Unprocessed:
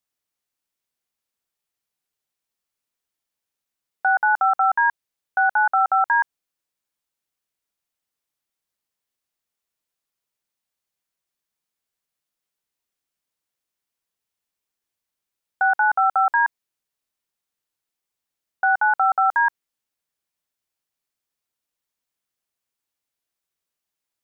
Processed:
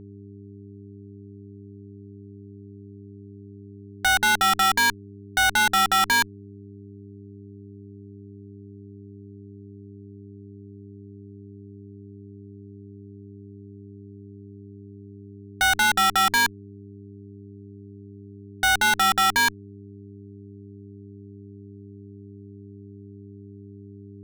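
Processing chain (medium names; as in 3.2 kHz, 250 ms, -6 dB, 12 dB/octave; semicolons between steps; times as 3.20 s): bass shelf 390 Hz -10.5 dB; fuzz box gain 48 dB, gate -50 dBFS; mains buzz 100 Hz, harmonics 4, -38 dBFS -3 dB/octave; trim -5 dB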